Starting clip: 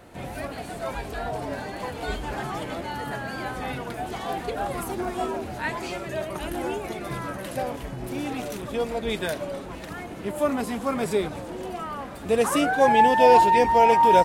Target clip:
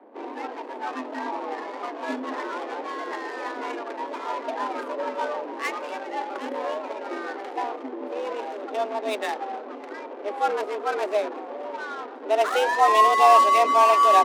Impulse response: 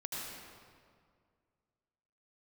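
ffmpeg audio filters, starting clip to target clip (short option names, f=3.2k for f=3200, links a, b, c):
-af "adynamicsmooth=sensitivity=5:basefreq=510,afreqshift=210"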